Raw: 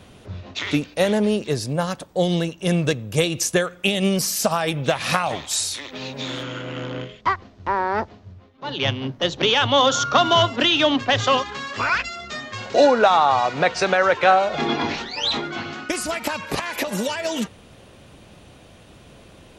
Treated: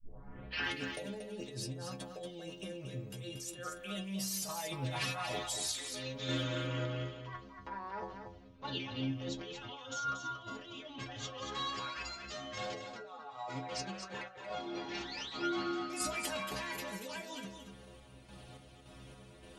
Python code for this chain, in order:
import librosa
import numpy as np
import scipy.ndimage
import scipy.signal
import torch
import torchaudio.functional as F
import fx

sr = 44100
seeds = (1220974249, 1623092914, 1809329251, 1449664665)

p1 = fx.tape_start_head(x, sr, length_s=0.76)
p2 = fx.over_compress(p1, sr, threshold_db=-28.0, ratio=-1.0)
p3 = fx.stiff_resonator(p2, sr, f0_hz=63.0, decay_s=0.49, stiffness=0.008)
p4 = fx.tremolo_random(p3, sr, seeds[0], hz=3.5, depth_pct=55)
p5 = p4 + fx.echo_single(p4, sr, ms=233, db=-7.0, dry=0)
y = p5 * librosa.db_to_amplitude(-2.0)